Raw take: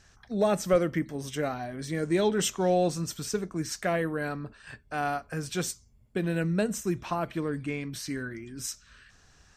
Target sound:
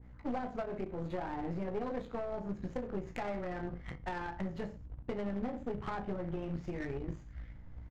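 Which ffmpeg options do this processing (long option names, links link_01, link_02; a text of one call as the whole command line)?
ffmpeg -i in.wav -filter_complex "[0:a]asplit=2[link_01][link_02];[link_02]aecho=0:1:20|44|72.8|107.4|148.8:0.631|0.398|0.251|0.158|0.1[link_03];[link_01][link_03]amix=inputs=2:normalize=0,asubboost=boost=3.5:cutoff=110,acompressor=threshold=-34dB:ratio=16,aeval=exprs='val(0)+0.00158*(sin(2*PI*50*n/s)+sin(2*PI*2*50*n/s)/2+sin(2*PI*3*50*n/s)/3+sin(2*PI*4*50*n/s)/4+sin(2*PI*5*50*n/s)/5)':channel_layout=same,asetrate=53361,aresample=44100,aresample=16000,acrusher=bits=3:mode=log:mix=0:aa=0.000001,aresample=44100,adynamicsmooth=sensitivity=4:basefreq=1000,aeval=exprs='(tanh(44.7*val(0)+0.7)-tanh(0.7))/44.7':channel_layout=same,adynamicequalizer=threshold=0.001:dfrequency=1700:dqfactor=0.7:tfrequency=1700:tqfactor=0.7:attack=5:release=100:ratio=0.375:range=2:mode=cutabove:tftype=highshelf,volume=5dB" out.wav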